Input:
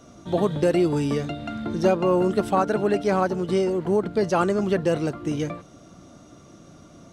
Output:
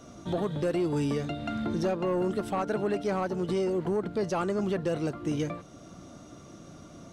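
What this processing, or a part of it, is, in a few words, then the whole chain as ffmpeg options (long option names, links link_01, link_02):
soft clipper into limiter: -af "asoftclip=type=tanh:threshold=-13.5dB,alimiter=limit=-21.5dB:level=0:latency=1:release=437"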